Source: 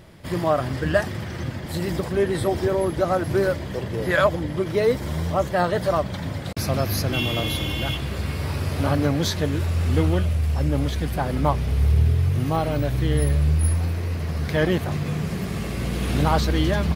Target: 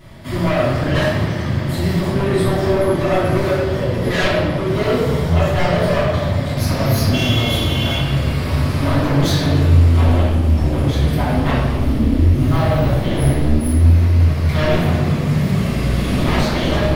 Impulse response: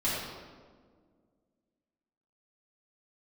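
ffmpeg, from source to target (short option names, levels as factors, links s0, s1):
-filter_complex "[0:a]equalizer=f=390:t=o:w=0.94:g=-3,aeval=exprs='0.473*sin(PI/2*3.98*val(0)/0.473)':c=same[s0];[1:a]atrim=start_sample=2205[s1];[s0][s1]afir=irnorm=-1:irlink=0,volume=0.158"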